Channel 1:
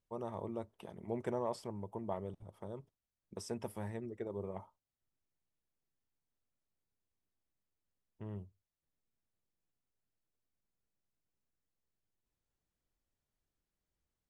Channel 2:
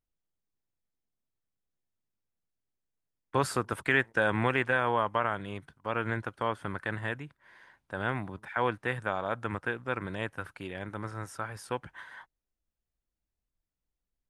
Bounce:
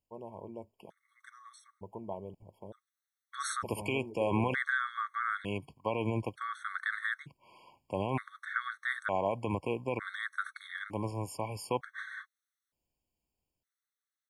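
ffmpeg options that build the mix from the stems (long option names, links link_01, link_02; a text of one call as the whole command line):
ffmpeg -i stem1.wav -i stem2.wav -filter_complex "[0:a]volume=-3dB[link_01];[1:a]highpass=frequency=57:width=0.5412,highpass=frequency=57:width=1.3066,alimiter=limit=-21dB:level=0:latency=1:release=24,volume=2dB[link_02];[link_01][link_02]amix=inputs=2:normalize=0,lowshelf=frequency=150:gain=-4,dynaudnorm=framelen=190:gausssize=9:maxgain=3dB,afftfilt=real='re*gt(sin(2*PI*0.55*pts/sr)*(1-2*mod(floor(b*sr/1024/1100),2)),0)':imag='im*gt(sin(2*PI*0.55*pts/sr)*(1-2*mod(floor(b*sr/1024/1100),2)),0)':win_size=1024:overlap=0.75" out.wav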